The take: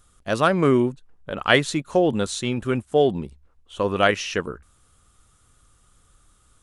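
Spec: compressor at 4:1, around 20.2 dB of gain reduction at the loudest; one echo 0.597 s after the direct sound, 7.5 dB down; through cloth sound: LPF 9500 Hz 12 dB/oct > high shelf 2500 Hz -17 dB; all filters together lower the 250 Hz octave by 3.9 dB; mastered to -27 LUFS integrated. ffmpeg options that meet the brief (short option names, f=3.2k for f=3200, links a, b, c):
-af "equalizer=f=250:t=o:g=-5,acompressor=threshold=-38dB:ratio=4,lowpass=9.5k,highshelf=f=2.5k:g=-17,aecho=1:1:597:0.422,volume=15dB"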